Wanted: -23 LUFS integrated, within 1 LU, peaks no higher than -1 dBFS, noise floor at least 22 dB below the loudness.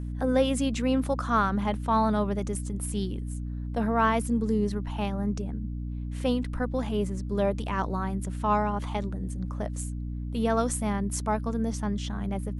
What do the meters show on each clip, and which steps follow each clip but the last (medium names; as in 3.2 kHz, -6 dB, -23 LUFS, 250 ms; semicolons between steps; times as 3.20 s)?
hum 60 Hz; highest harmonic 300 Hz; hum level -31 dBFS; loudness -28.5 LUFS; peak level -11.5 dBFS; loudness target -23.0 LUFS
-> hum notches 60/120/180/240/300 Hz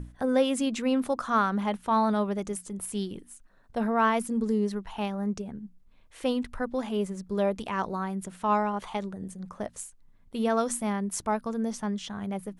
hum not found; loudness -29.0 LUFS; peak level -12.5 dBFS; loudness target -23.0 LUFS
-> trim +6 dB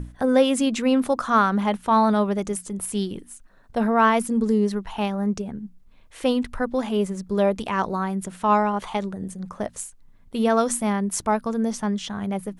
loudness -23.0 LUFS; peak level -6.5 dBFS; noise floor -51 dBFS